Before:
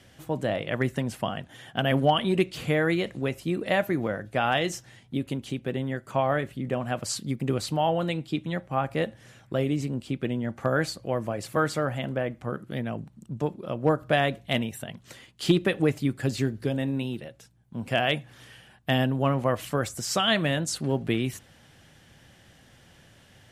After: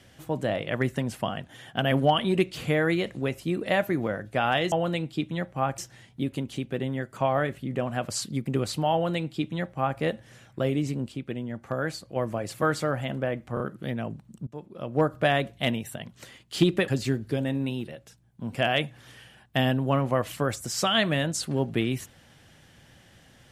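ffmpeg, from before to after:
-filter_complex "[0:a]asplit=9[s0][s1][s2][s3][s4][s5][s6][s7][s8];[s0]atrim=end=4.722[s9];[s1]atrim=start=7.868:end=8.932[s10];[s2]atrim=start=4.718:end=10.062[s11];[s3]atrim=start=10.058:end=11.102,asetpts=PTS-STARTPTS,volume=0.596[s12];[s4]atrim=start=11.098:end=12.512[s13];[s5]atrim=start=12.478:end=12.512[s14];[s6]atrim=start=12.478:end=13.35,asetpts=PTS-STARTPTS,afade=t=out:st=0.868:d=0.004:c=hsin:silence=0.0944061[s15];[s7]atrim=start=13.35:end=15.762,asetpts=PTS-STARTPTS,afade=t=in:d=0.57:silence=0.0944061[s16];[s8]atrim=start=16.208[s17];[s9][s10]acrossfade=d=0.004:c1=hsin:c2=hsin[s18];[s18][s11]acrossfade=d=0.004:c1=hsin:c2=hsin[s19];[s19][s12]acrossfade=d=0.004:c1=hsin:c2=hsin[s20];[s20][s13]acrossfade=d=0.004:c1=hsin:c2=hsin[s21];[s21][s14]acrossfade=d=0.004:c1=hsin:c2=hsin[s22];[s15][s16]concat=n=2:v=0:a=1[s23];[s22][s23]acrossfade=d=0.004:c1=hsin:c2=hsin[s24];[s24][s17]acrossfade=d=0.004:c1=hsin:c2=hsin"

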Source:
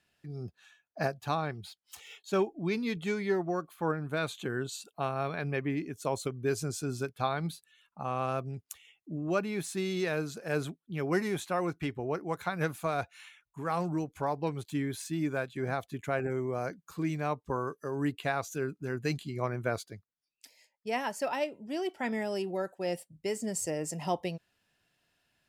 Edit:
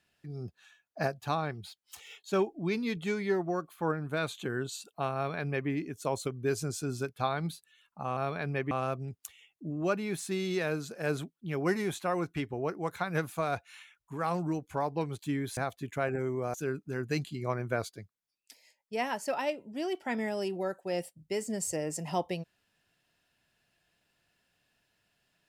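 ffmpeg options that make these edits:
-filter_complex "[0:a]asplit=5[s0][s1][s2][s3][s4];[s0]atrim=end=8.172[s5];[s1]atrim=start=5.148:end=5.692[s6];[s2]atrim=start=8.168:end=15.032[s7];[s3]atrim=start=15.678:end=16.652[s8];[s4]atrim=start=18.478[s9];[s5][s6]acrossfade=d=0.004:c1=hsin:c2=hsin[s10];[s10][s7]acrossfade=d=0.004:c1=hsin:c2=hsin[s11];[s11][s8]acrossfade=d=0.004:c1=hsin:c2=hsin[s12];[s12][s9]acrossfade=d=0.004:c1=hsin:c2=hsin"

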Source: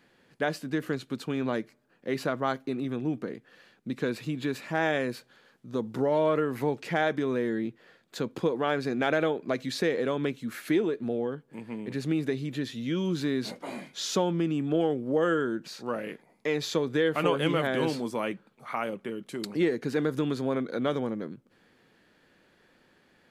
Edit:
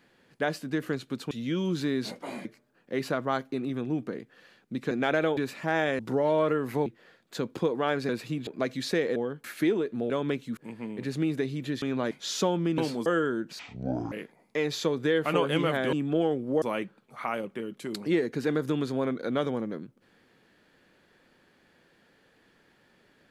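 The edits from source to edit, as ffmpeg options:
-filter_complex "[0:a]asplit=21[s0][s1][s2][s3][s4][s5][s6][s7][s8][s9][s10][s11][s12][s13][s14][s15][s16][s17][s18][s19][s20];[s0]atrim=end=1.312[s21];[s1]atrim=start=12.708:end=13.852[s22];[s2]atrim=start=1.598:end=4.062[s23];[s3]atrim=start=8.898:end=9.362[s24];[s4]atrim=start=4.438:end=5.062[s25];[s5]atrim=start=5.858:end=6.732[s26];[s6]atrim=start=7.668:end=8.902[s27];[s7]atrim=start=4.058:end=4.442[s28];[s8]atrim=start=9.358:end=10.052[s29];[s9]atrim=start=11.178:end=11.462[s30];[s10]atrim=start=10.518:end=11.182[s31];[s11]atrim=start=10.048:end=10.522[s32];[s12]atrim=start=11.458:end=12.712[s33];[s13]atrim=start=1.308:end=1.602[s34];[s14]atrim=start=13.848:end=14.522[s35];[s15]atrim=start=17.828:end=18.112[s36];[s16]atrim=start=15.208:end=15.744[s37];[s17]atrim=start=15.74:end=16.02,asetpts=PTS-STARTPTS,asetrate=23373,aresample=44100,atrim=end_sample=23298,asetpts=PTS-STARTPTS[s38];[s18]atrim=start=16.016:end=17.832[s39];[s19]atrim=start=14.518:end=15.212[s40];[s20]atrim=start=18.108[s41];[s21][s22]acrossfade=d=0.004:c1=hsin:c2=hsin[s42];[s42][s23]acrossfade=d=0.004:c1=hsin:c2=hsin[s43];[s43][s24]acrossfade=d=0.004:c1=hsin:c2=hsin[s44];[s44][s25]acrossfade=d=0.004:c1=hsin:c2=hsin[s45];[s45][s26]acrossfade=d=0.004:c1=hsin:c2=hsin[s46];[s46][s27]acrossfade=d=0.004:c1=hsin:c2=hsin[s47];[s47][s28]acrossfade=d=0.004:c1=hsin:c2=hsin[s48];[s48][s29]acrossfade=d=0.004:c1=hsin:c2=hsin[s49];[s49][s30]acrossfade=d=0.004:c1=hsin:c2=hsin[s50];[s50][s31]acrossfade=d=0.004:c1=hsin:c2=hsin[s51];[s51][s32]acrossfade=d=0.004:c1=hsin:c2=hsin[s52];[s52][s33]acrossfade=d=0.004:c1=hsin:c2=hsin[s53];[s53][s34]acrossfade=d=0.004:c1=hsin:c2=hsin[s54];[s54][s35]acrossfade=d=0.004:c1=hsin:c2=hsin[s55];[s55][s36]acrossfade=d=0.004:c1=hsin:c2=hsin[s56];[s56][s37]acrossfade=d=0.004:c1=hsin:c2=hsin[s57];[s57][s38]acrossfade=d=0.004:c1=hsin:c2=hsin[s58];[s58][s39]acrossfade=d=0.004:c1=hsin:c2=hsin[s59];[s59][s40]acrossfade=d=0.004:c1=hsin:c2=hsin[s60];[s60][s41]acrossfade=d=0.004:c1=hsin:c2=hsin"

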